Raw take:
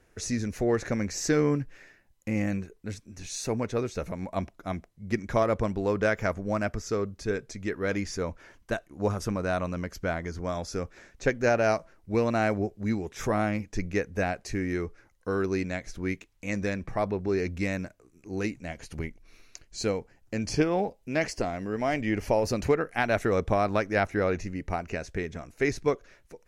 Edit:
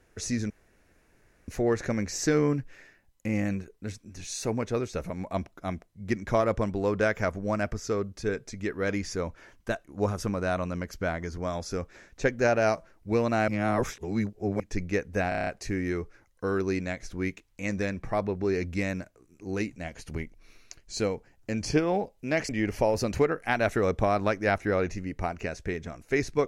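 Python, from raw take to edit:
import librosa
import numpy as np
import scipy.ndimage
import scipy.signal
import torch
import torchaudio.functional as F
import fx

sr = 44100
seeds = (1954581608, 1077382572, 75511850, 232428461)

y = fx.edit(x, sr, fx.insert_room_tone(at_s=0.5, length_s=0.98),
    fx.reverse_span(start_s=12.5, length_s=1.12),
    fx.stutter(start_s=14.31, slice_s=0.03, count=7),
    fx.cut(start_s=21.33, length_s=0.65), tone=tone)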